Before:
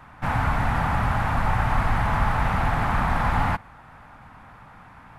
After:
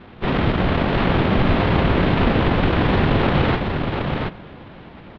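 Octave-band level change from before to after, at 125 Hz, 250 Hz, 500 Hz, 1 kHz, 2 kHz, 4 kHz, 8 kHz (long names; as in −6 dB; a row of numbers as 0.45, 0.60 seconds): +5.5 dB, +12.0 dB, +12.5 dB, 0.0 dB, +3.5 dB, +12.5 dB, below −10 dB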